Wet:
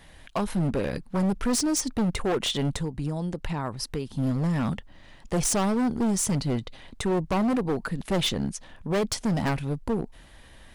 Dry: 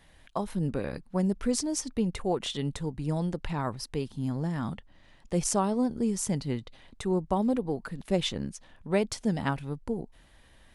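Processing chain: 2.75–4.12 compressor 12:1, threshold -33 dBFS, peak gain reduction 9.5 dB; overloaded stage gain 29 dB; gain +7.5 dB

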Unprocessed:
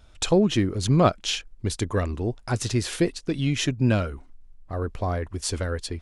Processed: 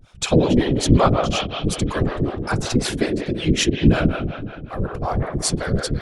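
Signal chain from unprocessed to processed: spring tank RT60 2.2 s, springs 47/57 ms, chirp 60 ms, DRR 2 dB; harmonic tremolo 5.4 Hz, depth 100%, crossover 420 Hz; whisperiser; gain +7.5 dB

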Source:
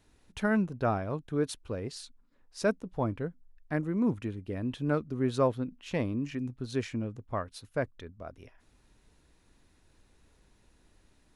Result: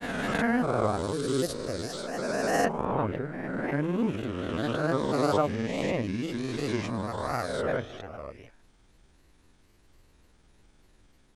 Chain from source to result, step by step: spectral swells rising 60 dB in 2.76 s; grains, spray 31 ms, pitch spread up and down by 3 st

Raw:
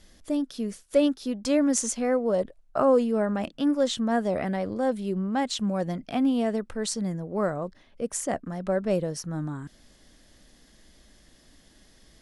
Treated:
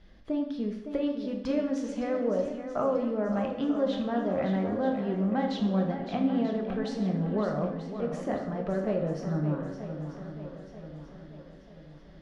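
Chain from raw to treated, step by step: compressor, threshold -25 dBFS, peak gain reduction 9 dB; air absorption 290 m; swung echo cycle 0.937 s, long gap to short 1.5:1, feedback 45%, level -9.5 dB; plate-style reverb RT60 0.83 s, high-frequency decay 0.85×, DRR 2.5 dB; gain -1 dB

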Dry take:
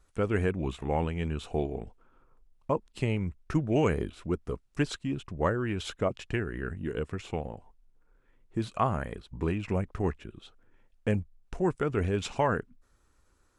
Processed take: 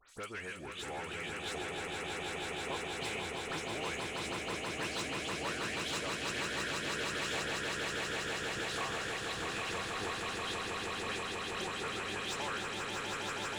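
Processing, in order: tilt shelf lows -9 dB, about 1500 Hz; compressor 3:1, threshold -50 dBFS, peak gain reduction 18.5 dB; dispersion highs, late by 94 ms, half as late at 2800 Hz; overdrive pedal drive 15 dB, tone 6900 Hz, clips at -34.5 dBFS; swelling echo 0.161 s, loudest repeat 8, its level -4.5 dB; gain +1.5 dB

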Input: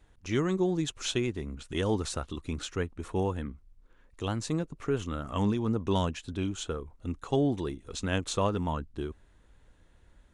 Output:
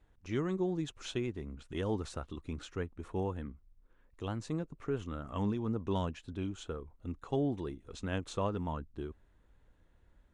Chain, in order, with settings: high shelf 3300 Hz -9 dB; gain -5.5 dB

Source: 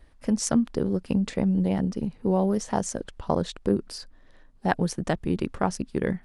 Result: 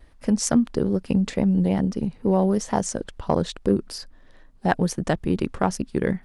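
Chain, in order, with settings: in parallel at -7 dB: hard clip -14.5 dBFS, distortion -21 dB; on the sum: vibrato 2.3 Hz 35 cents

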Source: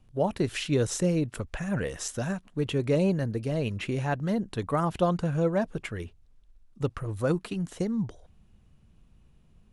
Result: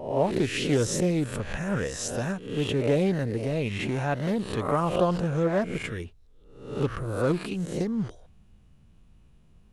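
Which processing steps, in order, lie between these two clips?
spectral swells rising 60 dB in 0.63 s; Doppler distortion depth 0.17 ms

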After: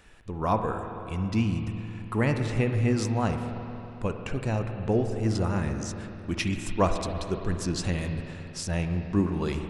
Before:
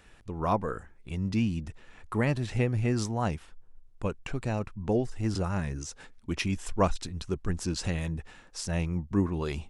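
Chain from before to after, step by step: spring tank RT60 3.2 s, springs 45/54 ms, chirp 25 ms, DRR 5.5 dB; gain +1.5 dB

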